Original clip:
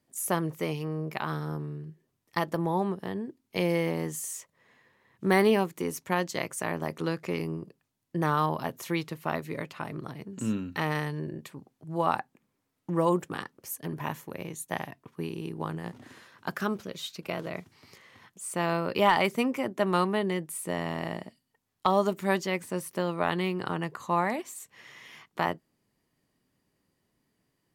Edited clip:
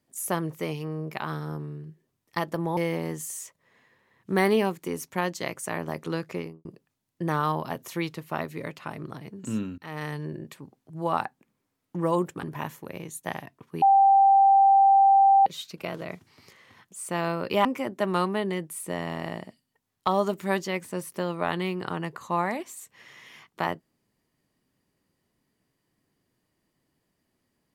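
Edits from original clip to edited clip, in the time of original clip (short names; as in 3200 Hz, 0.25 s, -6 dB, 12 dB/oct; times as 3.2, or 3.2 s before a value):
2.77–3.71 cut
7.24–7.59 studio fade out
10.72–11.11 fade in, from -23.5 dB
13.37–13.88 cut
15.27–16.91 bleep 785 Hz -14 dBFS
19.1–19.44 cut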